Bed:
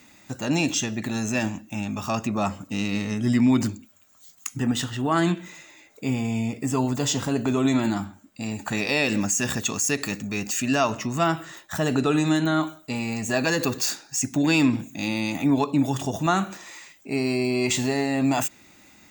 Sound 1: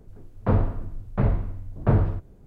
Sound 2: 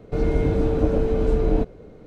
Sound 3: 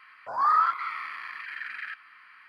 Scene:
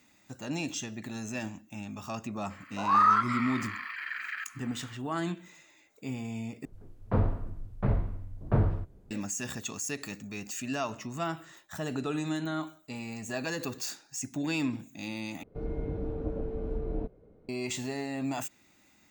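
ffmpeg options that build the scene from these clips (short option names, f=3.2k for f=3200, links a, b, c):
-filter_complex "[0:a]volume=-11dB[a];[2:a]lowpass=f=1.1k:p=1[b];[a]asplit=3[c][d][e];[c]atrim=end=6.654[f];[1:a]atrim=end=2.46,asetpts=PTS-STARTPTS,volume=-5.5dB[g];[d]atrim=start=9.106:end=15.434[h];[b]atrim=end=2.06,asetpts=PTS-STARTPTS,volume=-13.5dB[i];[e]atrim=start=17.486[j];[3:a]atrim=end=2.48,asetpts=PTS-STARTPTS,afade=t=in:d=0.004:c=hsin,afade=t=out:st=2.476:d=0.004:c=hsin,adelay=2500[k];[f][g]acrossfade=d=0.004:c1=hsin:c2=hsin[l];[l][h]acrossfade=d=0.004:c1=hsin:c2=hsin[m];[m][i]acrossfade=d=0.004:c1=hsin:c2=hsin[n];[n][j]acrossfade=d=0.004:c1=hsin:c2=hsin[o];[o][k]amix=inputs=2:normalize=0"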